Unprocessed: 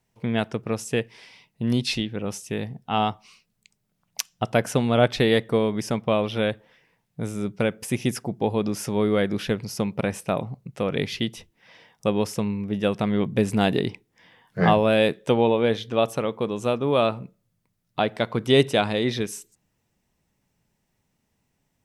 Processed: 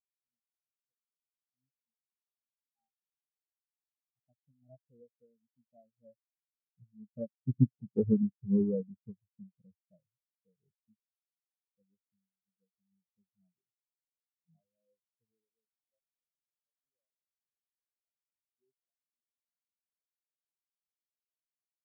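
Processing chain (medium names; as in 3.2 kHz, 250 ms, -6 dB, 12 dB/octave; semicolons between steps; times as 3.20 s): square wave that keeps the level; Doppler pass-by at 7.98 s, 20 m/s, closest 14 m; spectral contrast expander 4:1; trim -4 dB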